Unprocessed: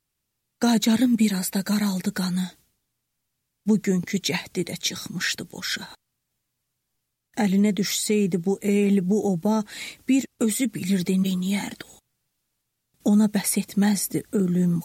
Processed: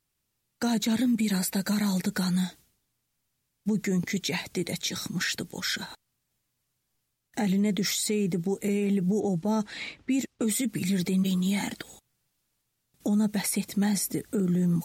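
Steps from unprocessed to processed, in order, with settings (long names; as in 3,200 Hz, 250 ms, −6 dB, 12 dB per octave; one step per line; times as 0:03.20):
0:09.20–0:10.48: low-pass that shuts in the quiet parts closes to 2,300 Hz, open at −17.5 dBFS
brickwall limiter −19 dBFS, peak gain reduction 8.5 dB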